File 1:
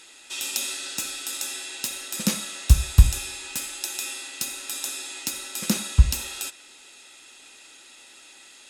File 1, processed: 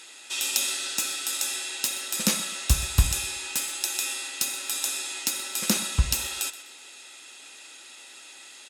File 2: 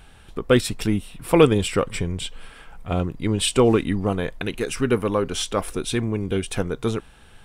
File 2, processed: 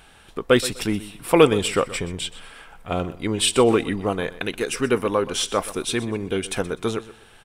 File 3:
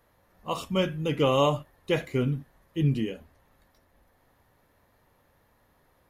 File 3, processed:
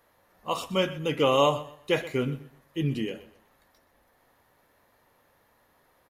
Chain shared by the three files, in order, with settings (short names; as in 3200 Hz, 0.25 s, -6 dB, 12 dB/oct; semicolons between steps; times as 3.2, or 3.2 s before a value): low shelf 200 Hz -11 dB; on a send: feedback echo 0.125 s, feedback 27%, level -16.5 dB; on the sum: gain +2.5 dB